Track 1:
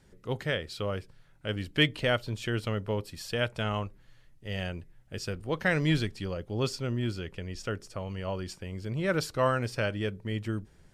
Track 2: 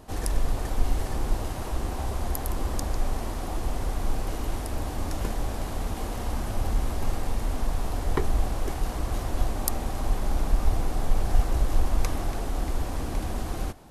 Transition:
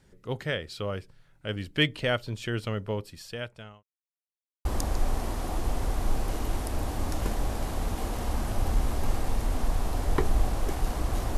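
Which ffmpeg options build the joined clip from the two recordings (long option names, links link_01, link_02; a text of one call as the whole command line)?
ffmpeg -i cue0.wav -i cue1.wav -filter_complex "[0:a]apad=whole_dur=11.37,atrim=end=11.37,asplit=2[link_01][link_02];[link_01]atrim=end=3.83,asetpts=PTS-STARTPTS,afade=type=out:start_time=2.91:duration=0.92[link_03];[link_02]atrim=start=3.83:end=4.65,asetpts=PTS-STARTPTS,volume=0[link_04];[1:a]atrim=start=2.64:end=9.36,asetpts=PTS-STARTPTS,afade=type=in:duration=0.004:curve=hsin[link_05];[link_03][link_04][link_05]concat=n=3:v=0:a=1" out.wav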